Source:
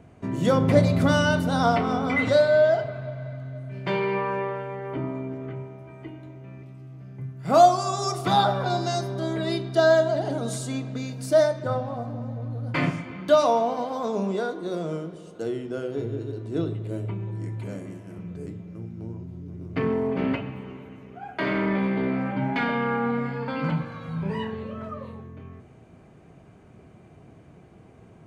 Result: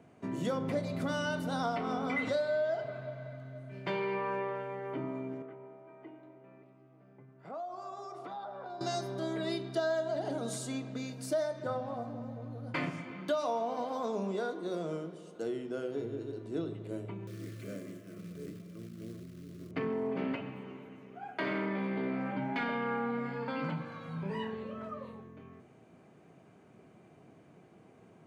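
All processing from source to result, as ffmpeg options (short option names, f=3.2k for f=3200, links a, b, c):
-filter_complex "[0:a]asettb=1/sr,asplit=3[a][b][c];[a]atrim=end=5.424[d];[b]atrim=start=5.42:end=8.81,asetpts=PTS-STARTPTS,afade=t=in:d=0.004:c=qsin,afade=t=out:st=3.386:d=0.004:c=qsin,acompressor=threshold=-31dB:ratio=16:attack=3.2:release=140:knee=1:detection=peak,bandpass=f=710:t=q:w=0.66[e];[c]atrim=start=8.806[f];[d][e]acrossfade=d=0.004:c1=hsin:c2=qsin[g];[g][f]acrossfade=d=0.004:c1=qsin:c2=hsin,asettb=1/sr,asplit=3[h][i][j];[h]atrim=end=17.274[k];[i]atrim=start=17.27:end=19.71,asetpts=PTS-STARTPTS,afade=t=in:d=0.004:c=qsin,afade=t=out:st=2.436:d=0.004:c=qsin,acrusher=bits=5:mode=log:mix=0:aa=0.000001,asuperstop=centerf=850:order=20:qfactor=2.4[l];[j]atrim=start=19.706[m];[k][l]acrossfade=d=0.004:c1=hsin:c2=qsin[n];[n][m]acrossfade=d=0.004:c1=qsin:c2=hsin,acompressor=threshold=-24dB:ratio=4,highpass=170,volume=-5.5dB"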